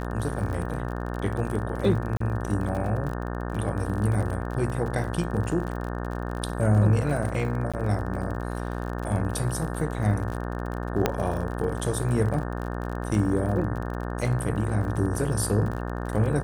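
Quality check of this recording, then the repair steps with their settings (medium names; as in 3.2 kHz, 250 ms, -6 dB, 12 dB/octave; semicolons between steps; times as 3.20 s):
buzz 60 Hz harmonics 30 -31 dBFS
crackle 40 per s -32 dBFS
2.17–2.20 s: dropout 34 ms
7.72–7.74 s: dropout 16 ms
11.06 s: pop -7 dBFS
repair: de-click; de-hum 60 Hz, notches 30; interpolate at 2.17 s, 34 ms; interpolate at 7.72 s, 16 ms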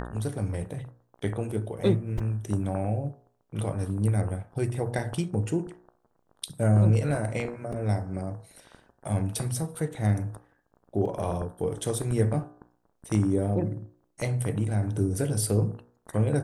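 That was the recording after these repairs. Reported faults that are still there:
11.06 s: pop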